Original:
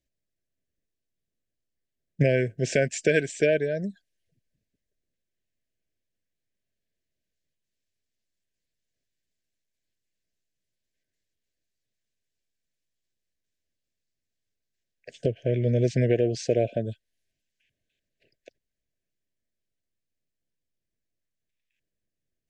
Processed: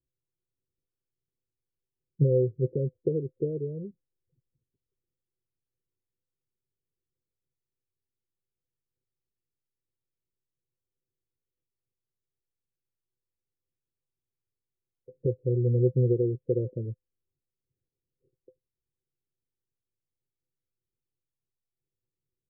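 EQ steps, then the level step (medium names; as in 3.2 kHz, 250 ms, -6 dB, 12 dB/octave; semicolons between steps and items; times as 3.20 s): rippled Chebyshev low-pass 530 Hz, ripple 9 dB; peaking EQ 190 Hz -8 dB 0.28 oct; +2.0 dB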